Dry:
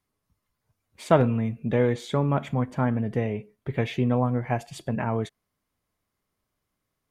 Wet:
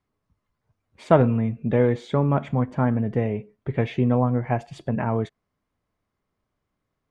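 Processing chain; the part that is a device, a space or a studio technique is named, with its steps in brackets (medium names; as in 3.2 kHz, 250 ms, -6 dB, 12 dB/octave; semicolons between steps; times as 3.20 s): through cloth (low-pass 8.4 kHz 12 dB/octave; treble shelf 3.1 kHz -11.5 dB); trim +3 dB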